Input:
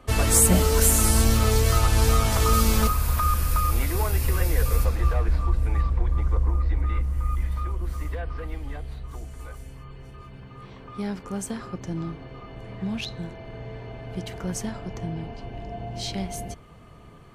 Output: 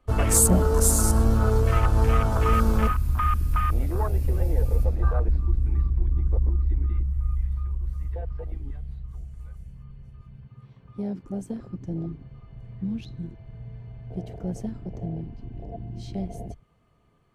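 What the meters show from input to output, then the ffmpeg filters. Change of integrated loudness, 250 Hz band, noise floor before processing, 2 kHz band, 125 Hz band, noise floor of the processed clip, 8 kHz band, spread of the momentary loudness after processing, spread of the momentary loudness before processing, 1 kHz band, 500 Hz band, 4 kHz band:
−1.0 dB, 0.0 dB, −46 dBFS, −5.0 dB, 0.0 dB, −55 dBFS, −2.5 dB, 20 LU, 20 LU, −1.5 dB, −0.5 dB, −10.5 dB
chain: -af "afwtdn=0.0398"

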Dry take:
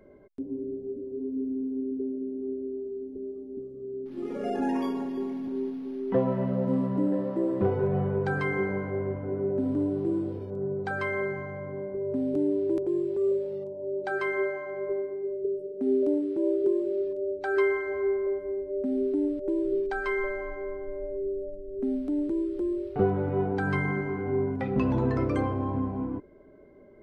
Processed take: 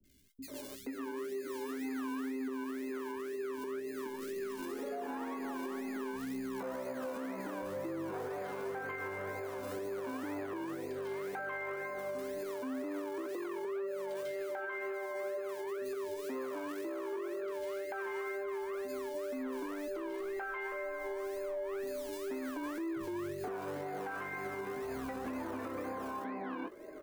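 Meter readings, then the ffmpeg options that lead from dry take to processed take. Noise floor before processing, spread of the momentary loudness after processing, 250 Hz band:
−42 dBFS, 2 LU, −12.0 dB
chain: -filter_complex "[0:a]acrossover=split=360|1100[link_01][link_02][link_03];[link_01]acrusher=samples=27:mix=1:aa=0.000001:lfo=1:lforange=16.2:lforate=2[link_04];[link_04][link_02][link_03]amix=inputs=3:normalize=0,crystalizer=i=1.5:c=0,asoftclip=type=tanh:threshold=-25dB,acrossover=split=280 2300:gain=0.158 1 0.251[link_05][link_06][link_07];[link_05][link_06][link_07]amix=inputs=3:normalize=0,asplit=2[link_08][link_09];[link_09]adelay=19,volume=-12dB[link_10];[link_08][link_10]amix=inputs=2:normalize=0,flanger=delay=3.2:depth=6.9:regen=60:speed=0.16:shape=triangular,acrossover=split=170|3200[link_11][link_12][link_13];[link_13]adelay=40[link_14];[link_12]adelay=480[link_15];[link_11][link_15][link_14]amix=inputs=3:normalize=0,acompressor=threshold=-50dB:ratio=2.5,equalizer=frequency=65:width_type=o:width=0.45:gain=5,alimiter=level_in=20dB:limit=-24dB:level=0:latency=1:release=117,volume=-20dB,volume=12.5dB"

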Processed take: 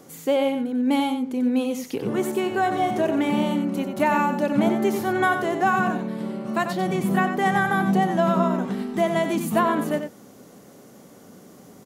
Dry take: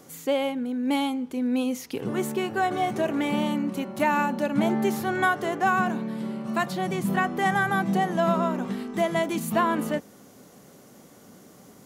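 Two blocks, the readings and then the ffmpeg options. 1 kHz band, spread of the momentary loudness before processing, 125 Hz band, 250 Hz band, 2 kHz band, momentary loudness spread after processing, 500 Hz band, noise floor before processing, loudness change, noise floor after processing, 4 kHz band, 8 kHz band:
+2.5 dB, 6 LU, +3.5 dB, +3.5 dB, +1.5 dB, 6 LU, +3.5 dB, −52 dBFS, +3.0 dB, −48 dBFS, +1.0 dB, +0.5 dB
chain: -af "equalizer=frequency=360:width=0.44:gain=3.5,aecho=1:1:92:0.398"

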